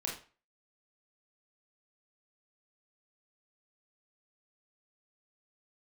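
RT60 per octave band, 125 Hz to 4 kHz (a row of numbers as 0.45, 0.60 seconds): 0.35, 0.35, 0.35, 0.40, 0.35, 0.30 seconds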